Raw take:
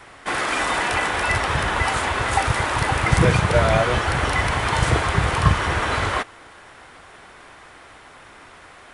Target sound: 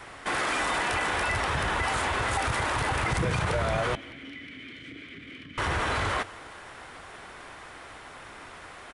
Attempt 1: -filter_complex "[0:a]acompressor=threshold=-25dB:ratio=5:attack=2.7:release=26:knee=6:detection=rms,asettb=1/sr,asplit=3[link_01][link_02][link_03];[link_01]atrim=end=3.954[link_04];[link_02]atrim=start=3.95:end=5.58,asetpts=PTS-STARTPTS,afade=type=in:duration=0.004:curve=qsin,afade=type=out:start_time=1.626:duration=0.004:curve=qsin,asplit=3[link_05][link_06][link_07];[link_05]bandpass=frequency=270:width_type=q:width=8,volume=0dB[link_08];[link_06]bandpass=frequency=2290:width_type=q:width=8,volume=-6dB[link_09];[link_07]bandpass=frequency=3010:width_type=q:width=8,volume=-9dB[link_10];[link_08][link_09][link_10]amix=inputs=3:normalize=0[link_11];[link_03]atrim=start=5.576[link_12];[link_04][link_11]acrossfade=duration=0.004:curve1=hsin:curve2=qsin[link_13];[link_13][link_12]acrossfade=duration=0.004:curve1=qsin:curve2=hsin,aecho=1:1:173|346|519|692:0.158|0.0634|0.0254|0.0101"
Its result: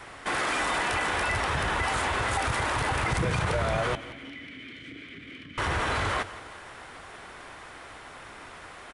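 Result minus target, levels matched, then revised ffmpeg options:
echo-to-direct +6.5 dB
-filter_complex "[0:a]acompressor=threshold=-25dB:ratio=5:attack=2.7:release=26:knee=6:detection=rms,asettb=1/sr,asplit=3[link_01][link_02][link_03];[link_01]atrim=end=3.954[link_04];[link_02]atrim=start=3.95:end=5.58,asetpts=PTS-STARTPTS,afade=type=in:duration=0.004:curve=qsin,afade=type=out:start_time=1.626:duration=0.004:curve=qsin,asplit=3[link_05][link_06][link_07];[link_05]bandpass=frequency=270:width_type=q:width=8,volume=0dB[link_08];[link_06]bandpass=frequency=2290:width_type=q:width=8,volume=-6dB[link_09];[link_07]bandpass=frequency=3010:width_type=q:width=8,volume=-9dB[link_10];[link_08][link_09][link_10]amix=inputs=3:normalize=0[link_11];[link_03]atrim=start=5.576[link_12];[link_04][link_11]acrossfade=duration=0.004:curve1=hsin:curve2=qsin[link_13];[link_13][link_12]acrossfade=duration=0.004:curve1=qsin:curve2=hsin,aecho=1:1:173|346|519:0.075|0.03|0.012"

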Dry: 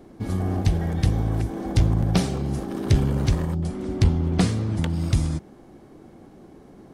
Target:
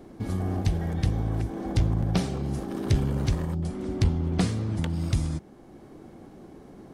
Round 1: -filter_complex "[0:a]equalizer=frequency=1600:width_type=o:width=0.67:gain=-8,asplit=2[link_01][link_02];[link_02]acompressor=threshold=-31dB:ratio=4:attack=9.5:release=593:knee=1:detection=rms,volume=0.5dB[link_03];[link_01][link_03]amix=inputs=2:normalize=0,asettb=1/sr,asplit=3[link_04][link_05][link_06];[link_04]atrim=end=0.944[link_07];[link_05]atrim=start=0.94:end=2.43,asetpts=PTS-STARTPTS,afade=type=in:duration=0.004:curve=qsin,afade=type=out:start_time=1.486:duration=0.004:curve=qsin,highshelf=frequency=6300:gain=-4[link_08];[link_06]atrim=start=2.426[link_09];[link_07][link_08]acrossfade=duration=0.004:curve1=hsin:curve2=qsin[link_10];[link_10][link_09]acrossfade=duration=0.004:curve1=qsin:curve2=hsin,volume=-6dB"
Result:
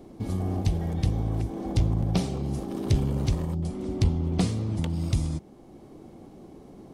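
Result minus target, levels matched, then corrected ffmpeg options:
2,000 Hz band −4.5 dB
-filter_complex "[0:a]asplit=2[link_01][link_02];[link_02]acompressor=threshold=-31dB:ratio=4:attack=9.5:release=593:knee=1:detection=rms,volume=0.5dB[link_03];[link_01][link_03]amix=inputs=2:normalize=0,asettb=1/sr,asplit=3[link_04][link_05][link_06];[link_04]atrim=end=0.944[link_07];[link_05]atrim=start=0.94:end=2.43,asetpts=PTS-STARTPTS,afade=type=in:duration=0.004:curve=qsin,afade=type=out:start_time=1.486:duration=0.004:curve=qsin,highshelf=frequency=6300:gain=-4[link_08];[link_06]atrim=start=2.426[link_09];[link_07][link_08]acrossfade=duration=0.004:curve1=hsin:curve2=qsin[link_10];[link_10][link_09]acrossfade=duration=0.004:curve1=qsin:curve2=hsin,volume=-6dB"

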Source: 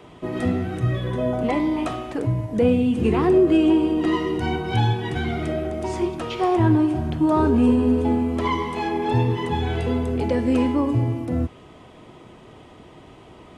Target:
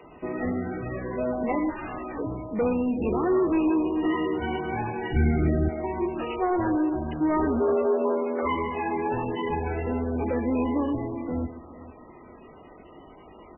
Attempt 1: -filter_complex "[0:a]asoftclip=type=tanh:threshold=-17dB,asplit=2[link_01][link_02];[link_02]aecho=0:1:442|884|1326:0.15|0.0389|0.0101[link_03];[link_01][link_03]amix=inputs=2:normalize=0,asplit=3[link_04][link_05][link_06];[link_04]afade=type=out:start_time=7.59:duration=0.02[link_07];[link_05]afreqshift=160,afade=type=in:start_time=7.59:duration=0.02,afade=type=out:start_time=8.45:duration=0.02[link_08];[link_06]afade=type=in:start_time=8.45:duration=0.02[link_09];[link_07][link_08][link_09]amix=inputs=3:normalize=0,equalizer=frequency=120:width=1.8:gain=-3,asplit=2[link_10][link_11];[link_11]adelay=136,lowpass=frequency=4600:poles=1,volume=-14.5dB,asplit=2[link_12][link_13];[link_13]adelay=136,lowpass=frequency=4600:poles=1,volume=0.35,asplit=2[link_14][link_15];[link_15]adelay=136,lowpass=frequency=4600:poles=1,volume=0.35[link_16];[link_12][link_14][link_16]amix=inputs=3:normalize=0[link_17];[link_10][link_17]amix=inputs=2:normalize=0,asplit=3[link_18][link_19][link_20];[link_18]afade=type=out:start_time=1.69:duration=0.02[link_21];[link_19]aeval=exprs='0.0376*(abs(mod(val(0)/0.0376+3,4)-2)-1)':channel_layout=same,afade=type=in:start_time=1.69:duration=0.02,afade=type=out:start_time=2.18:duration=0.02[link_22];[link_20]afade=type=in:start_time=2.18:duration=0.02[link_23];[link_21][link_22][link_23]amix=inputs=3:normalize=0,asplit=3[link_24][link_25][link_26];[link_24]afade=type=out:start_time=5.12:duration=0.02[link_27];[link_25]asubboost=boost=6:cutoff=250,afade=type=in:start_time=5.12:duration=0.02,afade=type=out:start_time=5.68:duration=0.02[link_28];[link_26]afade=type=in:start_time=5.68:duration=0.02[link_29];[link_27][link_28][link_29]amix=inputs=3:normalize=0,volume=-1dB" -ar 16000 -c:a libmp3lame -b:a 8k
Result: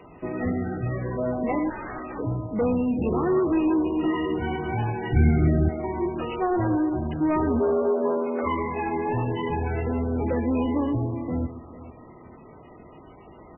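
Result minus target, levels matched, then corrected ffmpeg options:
125 Hz band +4.0 dB
-filter_complex "[0:a]asoftclip=type=tanh:threshold=-17dB,asplit=2[link_01][link_02];[link_02]aecho=0:1:442|884|1326:0.15|0.0389|0.0101[link_03];[link_01][link_03]amix=inputs=2:normalize=0,asplit=3[link_04][link_05][link_06];[link_04]afade=type=out:start_time=7.59:duration=0.02[link_07];[link_05]afreqshift=160,afade=type=in:start_time=7.59:duration=0.02,afade=type=out:start_time=8.45:duration=0.02[link_08];[link_06]afade=type=in:start_time=8.45:duration=0.02[link_09];[link_07][link_08][link_09]amix=inputs=3:normalize=0,equalizer=frequency=120:width=1.8:gain=-13.5,asplit=2[link_10][link_11];[link_11]adelay=136,lowpass=frequency=4600:poles=1,volume=-14.5dB,asplit=2[link_12][link_13];[link_13]adelay=136,lowpass=frequency=4600:poles=1,volume=0.35,asplit=2[link_14][link_15];[link_15]adelay=136,lowpass=frequency=4600:poles=1,volume=0.35[link_16];[link_12][link_14][link_16]amix=inputs=3:normalize=0[link_17];[link_10][link_17]amix=inputs=2:normalize=0,asplit=3[link_18][link_19][link_20];[link_18]afade=type=out:start_time=1.69:duration=0.02[link_21];[link_19]aeval=exprs='0.0376*(abs(mod(val(0)/0.0376+3,4)-2)-1)':channel_layout=same,afade=type=in:start_time=1.69:duration=0.02,afade=type=out:start_time=2.18:duration=0.02[link_22];[link_20]afade=type=in:start_time=2.18:duration=0.02[link_23];[link_21][link_22][link_23]amix=inputs=3:normalize=0,asplit=3[link_24][link_25][link_26];[link_24]afade=type=out:start_time=5.12:duration=0.02[link_27];[link_25]asubboost=boost=6:cutoff=250,afade=type=in:start_time=5.12:duration=0.02,afade=type=out:start_time=5.68:duration=0.02[link_28];[link_26]afade=type=in:start_time=5.68:duration=0.02[link_29];[link_27][link_28][link_29]amix=inputs=3:normalize=0,volume=-1dB" -ar 16000 -c:a libmp3lame -b:a 8k

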